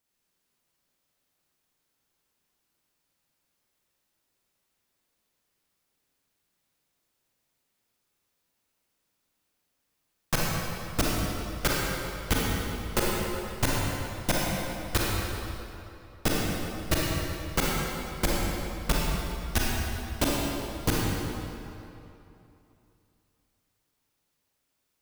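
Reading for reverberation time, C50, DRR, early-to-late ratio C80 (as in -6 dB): 2.9 s, -3.5 dB, -4.5 dB, -1.0 dB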